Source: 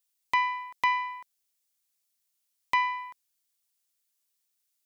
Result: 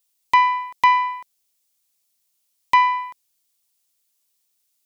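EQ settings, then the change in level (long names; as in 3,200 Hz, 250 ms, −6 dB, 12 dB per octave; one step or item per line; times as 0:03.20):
dynamic equaliser 670 Hz, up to +7 dB, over −40 dBFS, Q 0.73
parametric band 1,600 Hz −4.5 dB 0.77 octaves
+7.5 dB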